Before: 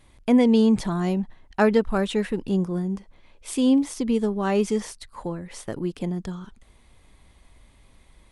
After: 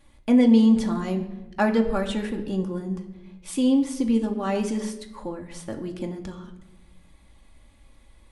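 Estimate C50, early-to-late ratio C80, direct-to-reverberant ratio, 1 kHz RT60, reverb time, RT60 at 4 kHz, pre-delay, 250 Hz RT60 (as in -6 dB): 11.0 dB, 13.0 dB, 2.5 dB, 0.90 s, 1.0 s, 0.70 s, 4 ms, 1.5 s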